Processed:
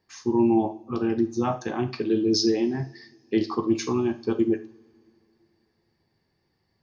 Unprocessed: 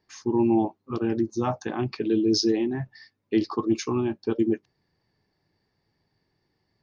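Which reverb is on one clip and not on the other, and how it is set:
coupled-rooms reverb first 0.37 s, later 2.8 s, from −28 dB, DRR 6 dB

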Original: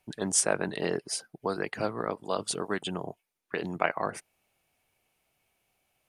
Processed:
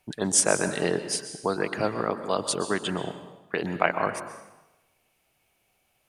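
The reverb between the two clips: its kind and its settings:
dense smooth reverb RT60 1 s, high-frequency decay 0.9×, pre-delay 110 ms, DRR 9.5 dB
level +4 dB

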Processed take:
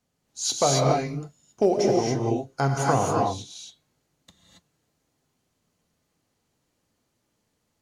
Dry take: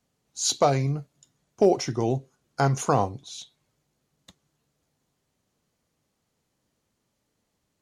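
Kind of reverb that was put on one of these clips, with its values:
reverb whose tail is shaped and stops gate 300 ms rising, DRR −2 dB
level −2 dB

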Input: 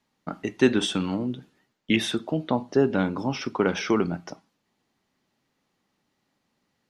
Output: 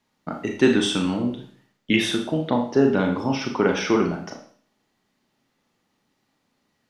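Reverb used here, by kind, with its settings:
four-comb reverb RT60 0.49 s, combs from 26 ms, DRR 2.5 dB
level +1.5 dB

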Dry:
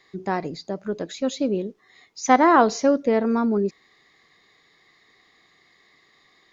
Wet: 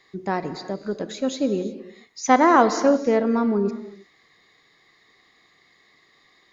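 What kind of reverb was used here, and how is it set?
reverb whose tail is shaped and stops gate 380 ms flat, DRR 11 dB

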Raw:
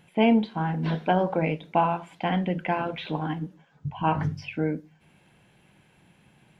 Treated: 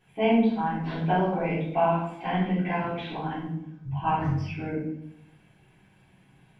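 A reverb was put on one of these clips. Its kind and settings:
rectangular room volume 170 cubic metres, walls mixed, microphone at 3.6 metres
level −13.5 dB

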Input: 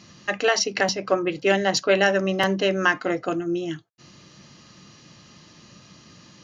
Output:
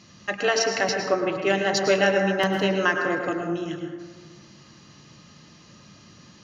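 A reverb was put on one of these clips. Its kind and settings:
dense smooth reverb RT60 1.5 s, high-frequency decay 0.35×, pre-delay 90 ms, DRR 3 dB
level −2.5 dB

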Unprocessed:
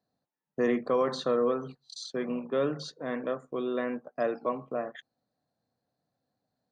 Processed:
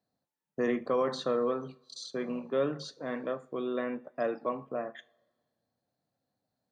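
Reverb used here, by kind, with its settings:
coupled-rooms reverb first 0.32 s, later 1.6 s, from −21 dB, DRR 13.5 dB
level −2 dB

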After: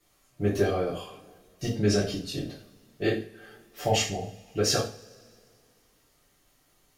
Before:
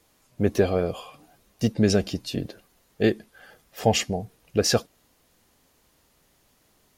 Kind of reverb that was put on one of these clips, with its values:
coupled-rooms reverb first 0.37 s, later 2.3 s, from −27 dB, DRR −8.5 dB
level −11 dB

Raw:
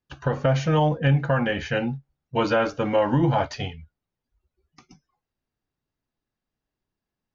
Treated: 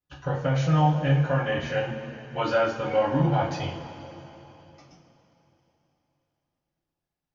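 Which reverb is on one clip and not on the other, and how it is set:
coupled-rooms reverb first 0.32 s, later 3.5 s, from −17 dB, DRR −6 dB
level −9.5 dB

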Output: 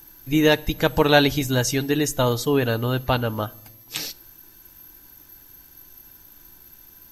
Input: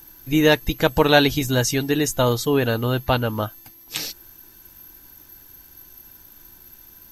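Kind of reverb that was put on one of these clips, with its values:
rectangular room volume 2,400 cubic metres, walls furnished, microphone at 0.33 metres
level −1.5 dB

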